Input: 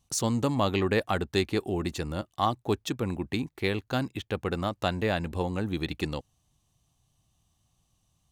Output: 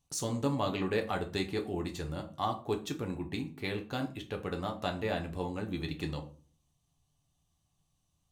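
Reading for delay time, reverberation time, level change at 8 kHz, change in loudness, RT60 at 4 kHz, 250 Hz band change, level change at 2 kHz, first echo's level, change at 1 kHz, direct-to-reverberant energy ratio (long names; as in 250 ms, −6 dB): no echo audible, 0.40 s, −6.0 dB, −5.5 dB, 0.30 s, −5.5 dB, −6.5 dB, no echo audible, −5.5 dB, 3.0 dB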